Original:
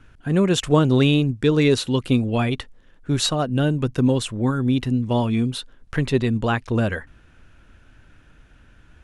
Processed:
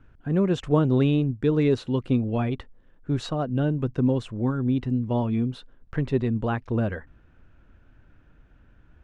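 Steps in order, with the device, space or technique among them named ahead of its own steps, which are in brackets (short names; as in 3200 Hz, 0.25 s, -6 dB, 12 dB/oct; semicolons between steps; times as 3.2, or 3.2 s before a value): through cloth (LPF 7500 Hz 12 dB/oct; high shelf 2200 Hz -14.5 dB); gain -3.5 dB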